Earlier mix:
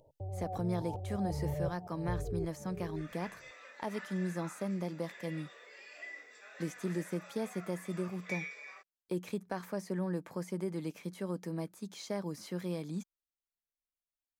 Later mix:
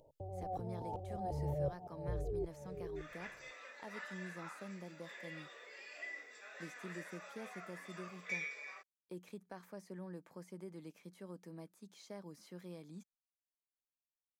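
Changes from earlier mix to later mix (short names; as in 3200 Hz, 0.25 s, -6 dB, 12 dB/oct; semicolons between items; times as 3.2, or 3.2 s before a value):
speech -12.0 dB; master: add bell 100 Hz -8.5 dB 0.63 oct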